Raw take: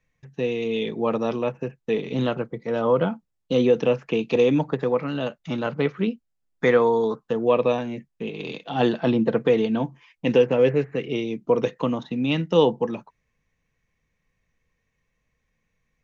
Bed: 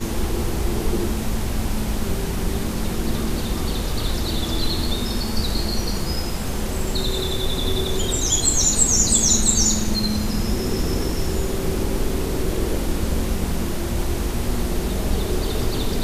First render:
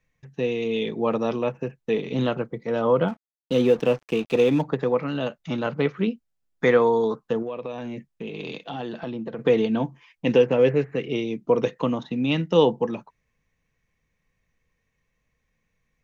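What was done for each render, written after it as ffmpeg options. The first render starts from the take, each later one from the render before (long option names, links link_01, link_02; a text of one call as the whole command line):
ffmpeg -i in.wav -filter_complex "[0:a]asettb=1/sr,asplit=3[link_01][link_02][link_03];[link_01]atrim=end=3.084[link_04];[link_02]atrim=start=3.08:end=4.62,asetpts=PTS-STARTPTS,afade=type=in:duration=0.004:curve=qsin,afade=type=out:start_time=1.536:duration=0.004:curve=qsin,aeval=exprs='sgn(val(0))*max(abs(val(0))-0.01,0)':channel_layout=same[link_05];[link_03]atrim=start=4.616[link_06];[link_04][link_05]acrossfade=duration=0.004:curve1=hsin:curve2=qsin[link_07];[link_07][link_06]acrossfade=duration=0.004:curve1=qsin:curve2=hsin,asettb=1/sr,asplit=3[link_08][link_09][link_10];[link_08]atrim=end=7.424[link_11];[link_09]atrim=start=7.42:end=9.39,asetpts=PTS-STARTPTS,afade=type=in:duration=0.004:curve=qsin,afade=type=out:start_time=1.966:duration=0.004:curve=qsin,acompressor=threshold=-28dB:ratio=8:attack=3.2:release=140:knee=1:detection=peak[link_12];[link_10]atrim=start=9.386[link_13];[link_11][link_12]acrossfade=duration=0.004:curve1=hsin:curve2=qsin[link_14];[link_14][link_13]acrossfade=duration=0.004:curve1=qsin:curve2=hsin" out.wav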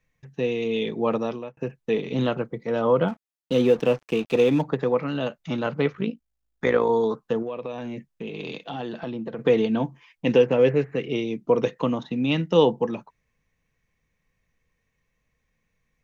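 ffmpeg -i in.wav -filter_complex "[0:a]asettb=1/sr,asplit=3[link_01][link_02][link_03];[link_01]atrim=end=5.934[link_04];[link_02]atrim=start=5.93:end=6.9,asetpts=PTS-STARTPTS,afade=type=in:duration=0.004:curve=qsin,afade=type=out:start_time=0.966:duration=0.004:curve=qsin,tremolo=f=54:d=0.71[link_05];[link_03]atrim=start=6.896[link_06];[link_04][link_05]acrossfade=duration=0.004:curve1=hsin:curve2=qsin[link_07];[link_07][link_06]acrossfade=duration=0.004:curve1=qsin:curve2=hsin,asplit=2[link_08][link_09];[link_08]atrim=end=1.57,asetpts=PTS-STARTPTS,afade=type=out:start_time=1.15:duration=0.42[link_10];[link_09]atrim=start=1.57,asetpts=PTS-STARTPTS,afade=type=in:duration=0.004:curve=hsin[link_11];[link_10][link_11]concat=n=2:v=0:a=1" out.wav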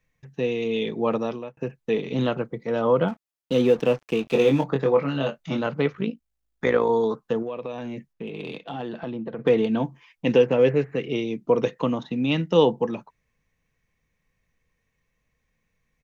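ffmpeg -i in.wav -filter_complex "[0:a]asplit=3[link_01][link_02][link_03];[link_01]afade=type=out:start_time=4.25:duration=0.02[link_04];[link_02]asplit=2[link_05][link_06];[link_06]adelay=22,volume=-4dB[link_07];[link_05][link_07]amix=inputs=2:normalize=0,afade=type=in:start_time=4.25:duration=0.02,afade=type=out:start_time=5.6:duration=0.02[link_08];[link_03]afade=type=in:start_time=5.6:duration=0.02[link_09];[link_04][link_08][link_09]amix=inputs=3:normalize=0,asettb=1/sr,asplit=3[link_10][link_11][link_12];[link_10]atrim=end=8.134[link_13];[link_11]atrim=start=8.13:end=9.67,asetpts=PTS-STARTPTS,afade=type=in:duration=0.004:curve=qsin,afade=type=out:start_time=1.536:duration=0.004:curve=qsin,adynamicsmooth=sensitivity=1.5:basefreq=4400[link_14];[link_12]atrim=start=9.666[link_15];[link_13][link_14]acrossfade=duration=0.004:curve1=hsin:curve2=qsin[link_16];[link_16][link_15]acrossfade=duration=0.004:curve1=qsin:curve2=hsin" out.wav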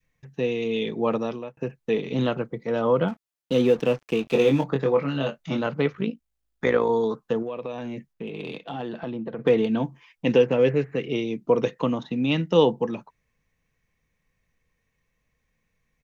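ffmpeg -i in.wav -af "adynamicequalizer=threshold=0.0355:dfrequency=740:dqfactor=0.82:tfrequency=740:tqfactor=0.82:attack=5:release=100:ratio=0.375:range=2:mode=cutabove:tftype=bell" out.wav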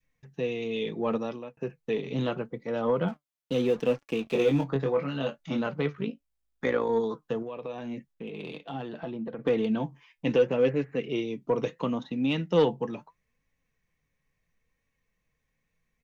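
ffmpeg -i in.wav -af "flanger=delay=3.5:depth=3.9:regen=67:speed=0.74:shape=sinusoidal,asoftclip=type=tanh:threshold=-13dB" out.wav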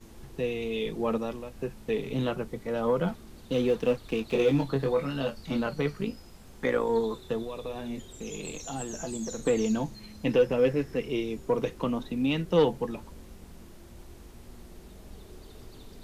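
ffmpeg -i in.wav -i bed.wav -filter_complex "[1:a]volume=-25dB[link_01];[0:a][link_01]amix=inputs=2:normalize=0" out.wav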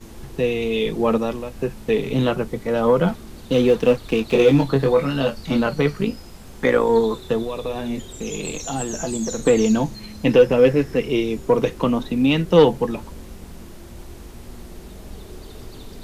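ffmpeg -i in.wav -af "volume=9.5dB" out.wav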